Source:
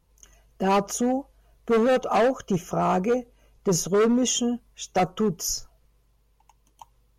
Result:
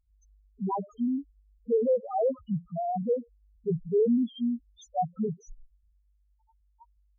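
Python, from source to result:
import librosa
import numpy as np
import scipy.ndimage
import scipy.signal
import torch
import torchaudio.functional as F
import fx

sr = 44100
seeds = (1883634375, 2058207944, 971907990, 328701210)

y = fx.env_lowpass_down(x, sr, base_hz=2000.0, full_db=-23.0)
y = fx.spec_topn(y, sr, count=1)
y = F.gain(torch.from_numpy(y), 2.0).numpy()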